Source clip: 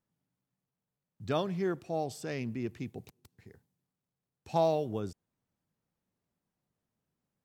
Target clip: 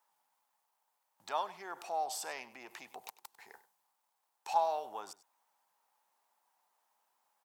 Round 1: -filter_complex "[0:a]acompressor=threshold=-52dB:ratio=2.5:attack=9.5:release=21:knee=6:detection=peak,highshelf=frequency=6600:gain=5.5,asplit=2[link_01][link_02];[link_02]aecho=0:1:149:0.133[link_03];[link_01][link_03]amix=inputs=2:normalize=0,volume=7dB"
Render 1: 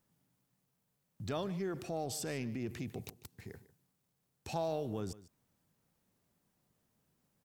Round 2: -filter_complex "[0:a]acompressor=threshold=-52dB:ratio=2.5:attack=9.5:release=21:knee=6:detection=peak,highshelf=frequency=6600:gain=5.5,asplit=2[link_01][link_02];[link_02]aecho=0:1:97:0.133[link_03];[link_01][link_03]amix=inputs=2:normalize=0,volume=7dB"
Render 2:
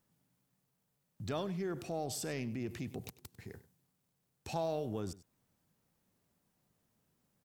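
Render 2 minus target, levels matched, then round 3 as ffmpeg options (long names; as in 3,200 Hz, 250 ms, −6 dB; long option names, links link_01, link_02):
1,000 Hz band −8.0 dB
-filter_complex "[0:a]acompressor=threshold=-52dB:ratio=2.5:attack=9.5:release=21:knee=6:detection=peak,highpass=frequency=880:width_type=q:width=5,highshelf=frequency=6600:gain=5.5,asplit=2[link_01][link_02];[link_02]aecho=0:1:97:0.133[link_03];[link_01][link_03]amix=inputs=2:normalize=0,volume=7dB"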